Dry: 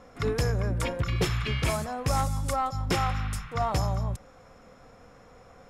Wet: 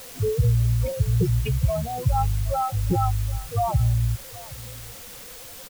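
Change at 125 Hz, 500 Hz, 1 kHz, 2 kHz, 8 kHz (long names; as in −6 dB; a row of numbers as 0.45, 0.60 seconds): +7.5, +3.0, +2.5, −8.0, +1.0 decibels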